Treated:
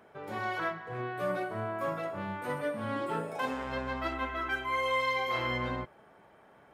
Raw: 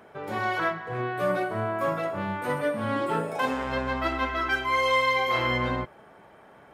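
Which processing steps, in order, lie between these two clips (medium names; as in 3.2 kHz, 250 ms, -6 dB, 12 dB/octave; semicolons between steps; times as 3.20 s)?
4.14–5.00 s: peaking EQ 5 kHz -9 dB 0.57 oct; trim -6.5 dB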